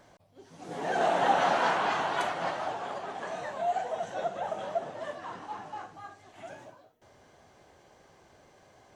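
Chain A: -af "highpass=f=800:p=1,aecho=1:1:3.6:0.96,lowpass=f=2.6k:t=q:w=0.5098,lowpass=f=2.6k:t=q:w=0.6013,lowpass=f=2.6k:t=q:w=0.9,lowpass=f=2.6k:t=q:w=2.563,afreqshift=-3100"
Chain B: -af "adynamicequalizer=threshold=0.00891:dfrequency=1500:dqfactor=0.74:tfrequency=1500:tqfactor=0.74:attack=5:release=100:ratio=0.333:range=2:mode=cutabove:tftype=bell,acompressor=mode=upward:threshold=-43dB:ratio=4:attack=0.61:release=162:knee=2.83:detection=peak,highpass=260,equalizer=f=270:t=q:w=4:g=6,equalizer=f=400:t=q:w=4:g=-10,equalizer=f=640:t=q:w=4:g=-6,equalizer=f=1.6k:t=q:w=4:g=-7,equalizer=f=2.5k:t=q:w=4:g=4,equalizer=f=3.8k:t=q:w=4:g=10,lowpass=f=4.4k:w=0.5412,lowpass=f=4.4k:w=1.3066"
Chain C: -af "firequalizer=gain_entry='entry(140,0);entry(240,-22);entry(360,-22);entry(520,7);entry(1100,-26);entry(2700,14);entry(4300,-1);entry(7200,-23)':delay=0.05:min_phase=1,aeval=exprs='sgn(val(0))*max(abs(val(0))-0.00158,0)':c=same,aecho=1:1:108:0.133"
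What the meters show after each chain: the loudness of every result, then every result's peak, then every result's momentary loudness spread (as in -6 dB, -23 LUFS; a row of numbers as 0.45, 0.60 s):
-29.5, -35.0, -31.5 LUFS; -12.5, -17.0, -15.5 dBFS; 22, 25, 22 LU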